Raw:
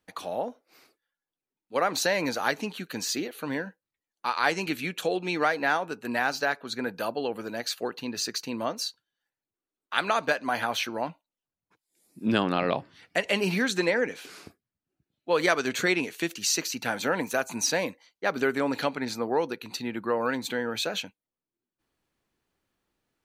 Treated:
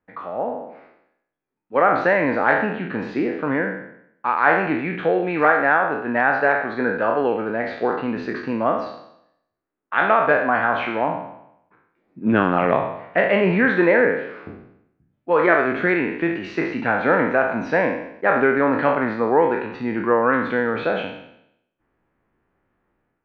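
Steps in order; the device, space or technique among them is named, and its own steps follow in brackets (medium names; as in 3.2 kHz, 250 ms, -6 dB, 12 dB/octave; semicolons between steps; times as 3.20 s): spectral sustain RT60 0.76 s; action camera in a waterproof case (low-pass 2 kHz 24 dB/octave; level rider gain up to 8.5 dB; AAC 64 kbps 48 kHz)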